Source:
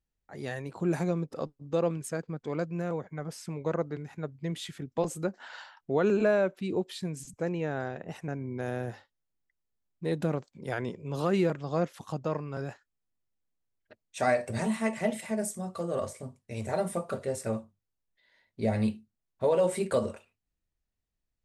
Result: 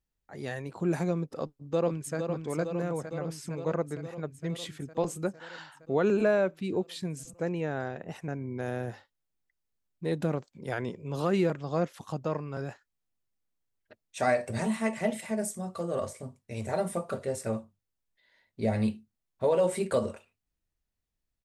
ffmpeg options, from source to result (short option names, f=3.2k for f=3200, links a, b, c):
-filter_complex "[0:a]asplit=2[a][b];[b]afade=t=in:st=1.4:d=0.01,afade=t=out:st=2.17:d=0.01,aecho=0:1:460|920|1380|1840|2300|2760|3220|3680|4140|4600|5060|5520:0.501187|0.37589|0.281918|0.211438|0.158579|0.118934|0.0892006|0.0669004|0.0501753|0.0376315|0.0282236|0.0211677[c];[a][c]amix=inputs=2:normalize=0"